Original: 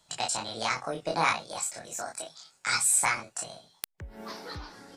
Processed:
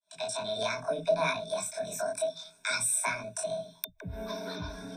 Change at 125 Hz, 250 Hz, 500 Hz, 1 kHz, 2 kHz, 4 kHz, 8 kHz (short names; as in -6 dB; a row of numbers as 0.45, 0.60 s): +1.0, +0.5, +7.0, -5.0, -3.5, -2.5, -5.0 dB